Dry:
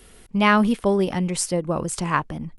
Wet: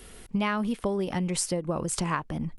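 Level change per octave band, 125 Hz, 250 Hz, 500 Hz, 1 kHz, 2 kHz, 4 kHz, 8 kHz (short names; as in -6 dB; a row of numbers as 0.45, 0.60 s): -5.0, -7.0, -7.5, -9.0, -10.0, -6.0, -3.0 dB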